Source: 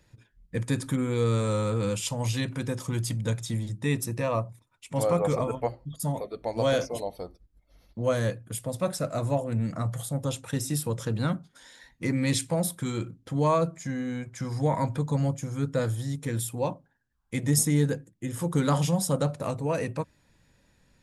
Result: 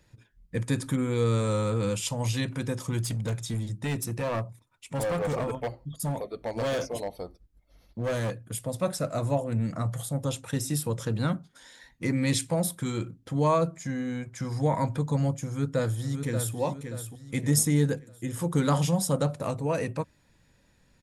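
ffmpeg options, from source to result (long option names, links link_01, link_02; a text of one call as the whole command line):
ffmpeg -i in.wav -filter_complex "[0:a]asettb=1/sr,asplit=3[link_01][link_02][link_03];[link_01]atrim=end=3.024[link_04];[link_02]atrim=start=3.02:end=8.35,asetpts=PTS-STARTPTS,afade=type=in:duration=0.004:curve=qsin,afade=type=out:start_time=5.326:duration=0.004:curve=qsin,asoftclip=type=hard:threshold=-25.5dB[link_05];[link_03]atrim=start=8.346[link_06];[link_04][link_05]acrossfade=duration=0.004:curve1=hsin:curve2=qsin[link_07];[link_07][link_06]acrossfade=duration=0.004:curve1=qsin:curve2=hsin,asplit=2[link_08][link_09];[link_09]afade=type=in:start_time=15.44:duration=0.01,afade=type=out:start_time=16.57:duration=0.01,aecho=0:1:580|1160|1740|2320|2900:0.421697|0.168679|0.0674714|0.0269886|0.0107954[link_10];[link_08][link_10]amix=inputs=2:normalize=0" out.wav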